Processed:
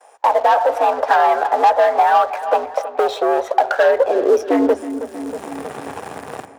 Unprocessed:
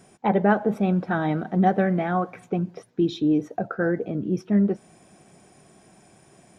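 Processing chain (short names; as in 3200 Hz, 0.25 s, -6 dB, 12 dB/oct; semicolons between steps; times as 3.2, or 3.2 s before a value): half-wave gain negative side -7 dB; AGC gain up to 14.5 dB; gate with hold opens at -45 dBFS; frequency shift +77 Hz; graphic EQ 250/500/1000/2000/4000 Hz -12/+4/+4/+5/-3 dB; sample leveller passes 3; on a send: darkening echo 0.319 s, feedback 45%, low-pass 3000 Hz, level -16.5 dB; on the sum: high-pass sweep 660 Hz -> 110 Hz, 3.79–5.96; bell 2200 Hz -4.5 dB 0.59 oct; three-band squash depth 70%; gain -11 dB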